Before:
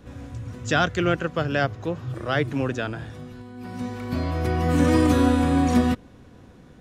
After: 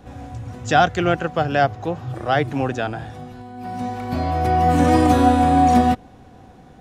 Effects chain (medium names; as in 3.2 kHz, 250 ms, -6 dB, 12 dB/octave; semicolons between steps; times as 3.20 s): peaking EQ 760 Hz +13.5 dB 0.3 oct; trim +2 dB